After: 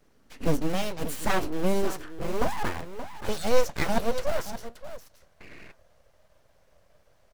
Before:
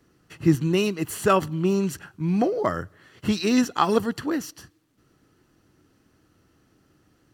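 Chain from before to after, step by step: dynamic bell 1.9 kHz, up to -4 dB, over -40 dBFS, Q 1.1; in parallel at -8.5 dB: integer overflow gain 24.5 dB; on the sum: high-pass sweep 100 Hz -> 260 Hz, 0.64–2.55 s; on a send: delay 576 ms -11.5 dB; on the sum: painted sound noise, 5.40–5.72 s, 670–1500 Hz -40 dBFS; flange 1.6 Hz, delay 6.1 ms, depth 2.7 ms, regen +75%; full-wave rectifier

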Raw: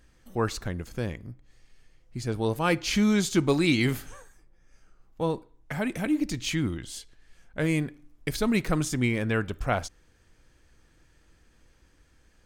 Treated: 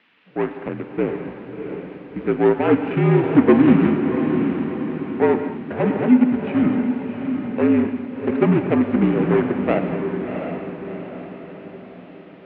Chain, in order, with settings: median filter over 41 samples; level rider gain up to 10 dB; added noise violet -37 dBFS; distance through air 69 m; gated-style reverb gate 260 ms flat, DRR 8 dB; mistuned SSB -54 Hz 270–2800 Hz; echo that smears into a reverb 702 ms, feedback 50%, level -6.5 dB; trim +4 dB

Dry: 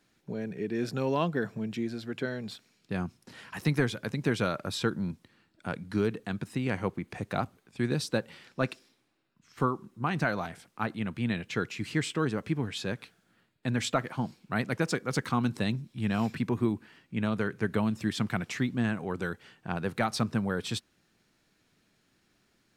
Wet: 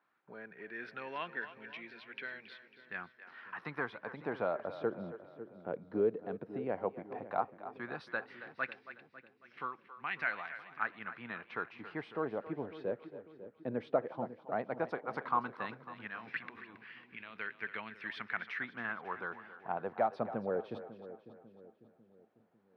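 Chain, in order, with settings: 16.07–17.36 s: compressor with a negative ratio -34 dBFS, ratio -1; LFO band-pass sine 0.13 Hz 490–2300 Hz; boxcar filter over 6 samples; on a send: two-band feedback delay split 380 Hz, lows 548 ms, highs 274 ms, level -13 dB; on the sum: trim +3 dB

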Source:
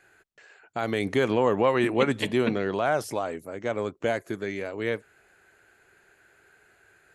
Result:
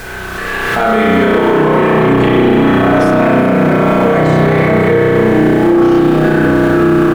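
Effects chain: low-pass 2.6 kHz 6 dB/octave; comb 4.6 ms, depth 67%; reverse; compression, threshold -36 dBFS, peak gain reduction 18.5 dB; reverse; feedback comb 92 Hz, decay 0.3 s, harmonics all, mix 70%; added noise pink -67 dBFS; ever faster or slower copies 232 ms, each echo -5 st, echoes 2; spring tank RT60 3.5 s, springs 32 ms, chirp 25 ms, DRR -8.5 dB; loudness maximiser +34.5 dB; swell ahead of each attack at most 25 dB/s; trim -1.5 dB

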